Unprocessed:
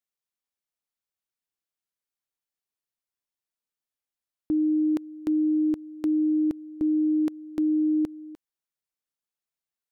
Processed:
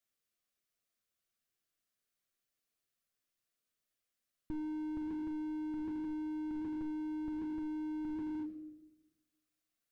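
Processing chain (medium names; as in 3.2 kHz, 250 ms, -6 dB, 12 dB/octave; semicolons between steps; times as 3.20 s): Butterworth band-stop 900 Hz, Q 3.4; reverberation RT60 1.0 s, pre-delay 9 ms, DRR 3 dB; slew-rate limiter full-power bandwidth 3.1 Hz; trim +2 dB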